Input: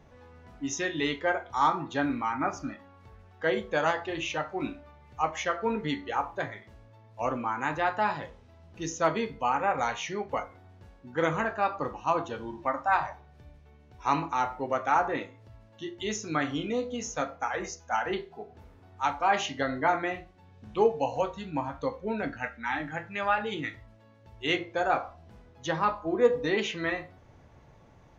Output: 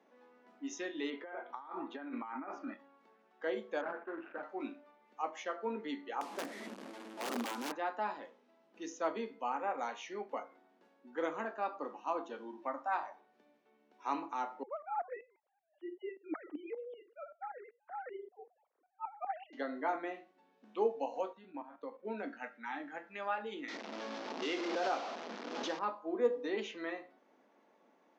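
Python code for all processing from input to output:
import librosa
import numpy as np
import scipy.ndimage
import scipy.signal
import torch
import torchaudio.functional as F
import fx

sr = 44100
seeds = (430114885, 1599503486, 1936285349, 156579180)

y = fx.chain(x, sr, fx.lowpass(hz=2700.0, slope=12),
    fx.low_shelf(hz=140.0, db=-9.0),
    fx.over_compress(threshold_db=-35.0, ratio=-1.0), at=(1.1, 2.74))
y = fx.chain(y, sr, fx.median_filter(points=41),
    fx.lowpass_res(hz=1500.0, q=7.2), at=(3.81, 4.43))
y = fx.chain(y, sr, fx.delta_mod(bps=64000, step_db=-32.5),
    fx.peak_eq(hz=180.0, db=10.0, octaves=2.0),
    fx.overflow_wrap(gain_db=20.5), at=(6.21, 7.72))
y = fx.chain(y, sr, fx.sine_speech(),
    fx.lowpass(hz=2000.0, slope=6),
    fx.tremolo_shape(shape='saw_up', hz=5.2, depth_pct=80), at=(14.63, 19.53))
y = fx.chain(y, sr, fx.level_steps(step_db=11),
    fx.air_absorb(metres=210.0), at=(21.33, 22.05))
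y = fx.chain(y, sr, fx.delta_mod(bps=32000, step_db=-25.0),
    fx.pre_swell(db_per_s=20.0), at=(23.68, 25.79))
y = fx.dynamic_eq(y, sr, hz=1900.0, q=0.85, threshold_db=-37.0, ratio=4.0, max_db=-4)
y = scipy.signal.sosfilt(scipy.signal.butter(8, 220.0, 'highpass', fs=sr, output='sos'), y)
y = fx.high_shelf(y, sr, hz=5100.0, db=-8.5)
y = y * 10.0 ** (-8.0 / 20.0)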